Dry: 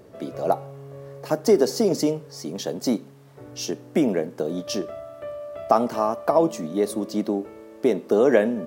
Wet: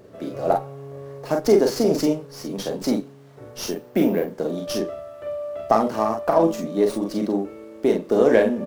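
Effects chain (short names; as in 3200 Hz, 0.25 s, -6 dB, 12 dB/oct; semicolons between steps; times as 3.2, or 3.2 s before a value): 3.66–4.29 careless resampling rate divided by 3×, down filtered, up hold; early reflections 36 ms -6.5 dB, 46 ms -6 dB; running maximum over 3 samples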